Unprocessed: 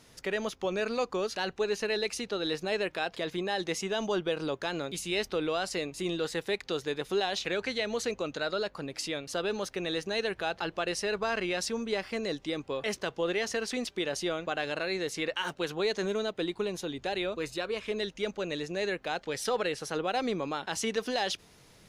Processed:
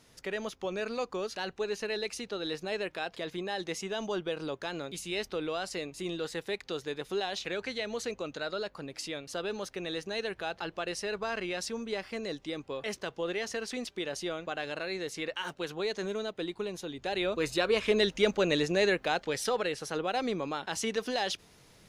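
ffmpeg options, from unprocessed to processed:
-af "volume=7dB,afade=t=in:st=16.97:d=0.8:silence=0.298538,afade=t=out:st=18.6:d=0.97:silence=0.398107"

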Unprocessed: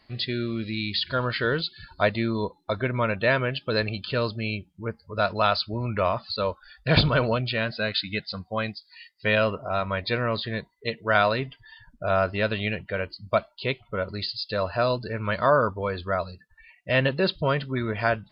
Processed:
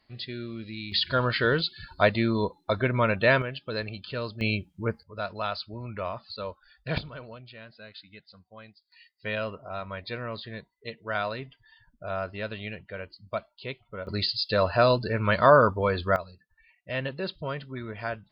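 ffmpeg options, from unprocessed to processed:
-af "asetnsamples=n=441:p=0,asendcmd='0.92 volume volume 1dB;3.42 volume volume -7dB;4.41 volume volume 2.5dB;5.03 volume volume -9dB;6.98 volume volume -19.5dB;8.92 volume volume -9dB;14.07 volume volume 3dB;16.16 volume volume -9dB',volume=-8dB"

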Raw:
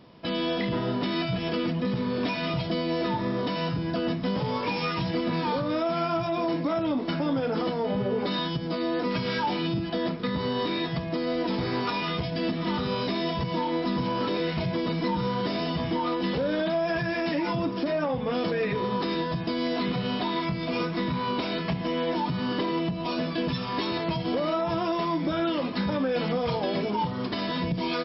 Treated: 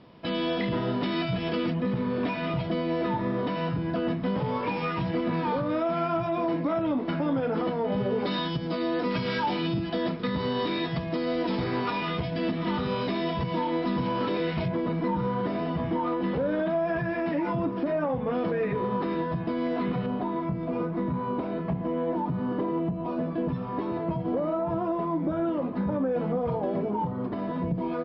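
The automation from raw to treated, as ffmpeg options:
-af "asetnsamples=n=441:p=0,asendcmd='1.74 lowpass f 2400;7.92 lowpass f 4400;11.64 lowpass f 3200;14.68 lowpass f 1700;20.06 lowpass f 1000',lowpass=3.9k"

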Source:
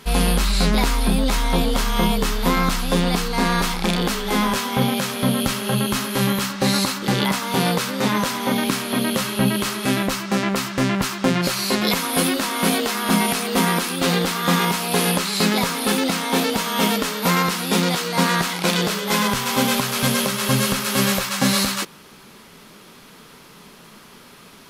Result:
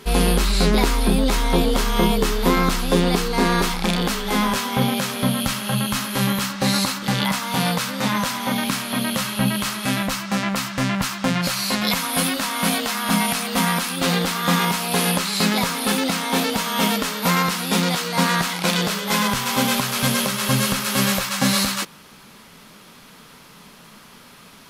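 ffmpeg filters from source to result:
-af "asetnsamples=n=441:p=0,asendcmd='3.69 equalizer g -2.5;5.27 equalizer g -13.5;6.13 equalizer g -7;6.99 equalizer g -13;13.97 equalizer g -5.5',equalizer=f=380:t=o:w=0.57:g=7"

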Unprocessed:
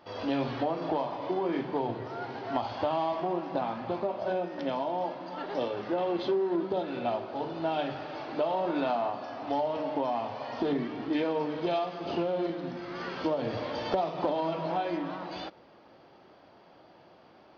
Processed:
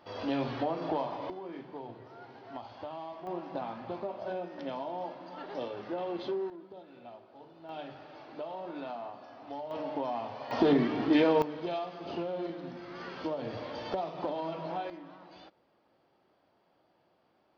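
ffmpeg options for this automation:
-af "asetnsamples=n=441:p=0,asendcmd='1.3 volume volume -12.5dB;3.27 volume volume -6dB;6.5 volume volume -18.5dB;7.69 volume volume -11dB;9.71 volume volume -4dB;10.51 volume volume 5dB;11.42 volume volume -5.5dB;14.9 volume volume -14dB',volume=-2dB"

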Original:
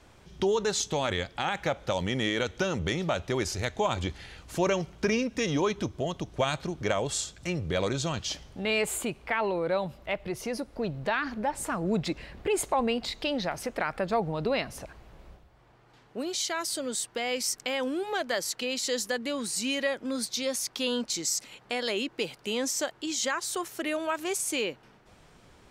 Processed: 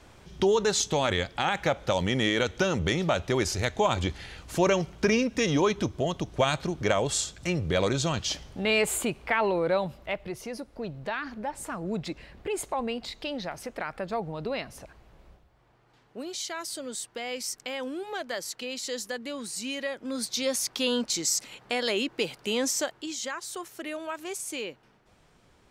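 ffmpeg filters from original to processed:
-af "volume=9.5dB,afade=t=out:st=9.64:d=0.82:silence=0.446684,afade=t=in:st=19.94:d=0.53:silence=0.473151,afade=t=out:st=22.7:d=0.49:silence=0.421697"

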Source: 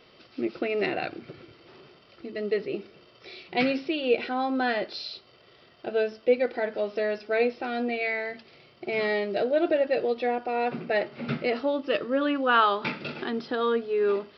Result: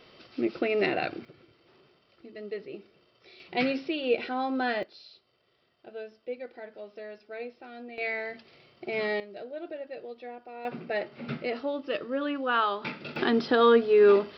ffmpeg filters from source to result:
-af "asetnsamples=n=441:p=0,asendcmd='1.25 volume volume -9.5dB;3.4 volume volume -2.5dB;4.83 volume volume -14.5dB;7.98 volume volume -3dB;9.2 volume volume -15dB;10.65 volume volume -5dB;13.16 volume volume 6dB',volume=1dB"

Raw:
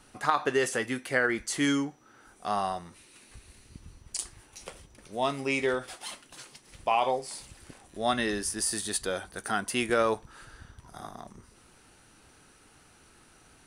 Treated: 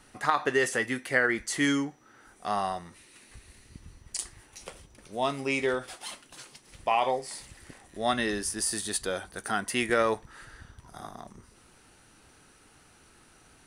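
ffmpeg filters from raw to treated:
-af "asetnsamples=n=441:p=0,asendcmd='4.58 equalizer g 0;6.83 equalizer g 9;8.12 equalizer g 1;9.61 equalizer g 9.5;10.61 equalizer g 1',equalizer=f=1.9k:t=o:w=0.22:g=6"

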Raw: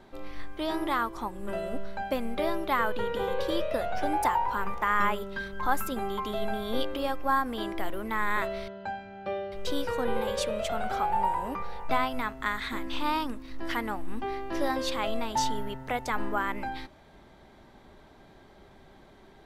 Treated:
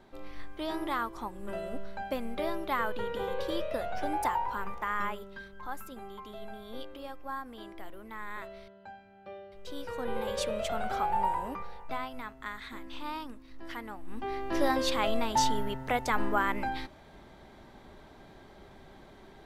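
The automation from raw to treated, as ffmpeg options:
-af "volume=17.5dB,afade=t=out:st=4.36:d=1.29:silence=0.375837,afade=t=in:st=9.65:d=0.82:silence=0.298538,afade=t=out:st=11.34:d=0.53:silence=0.421697,afade=t=in:st=14.01:d=0.53:silence=0.281838"

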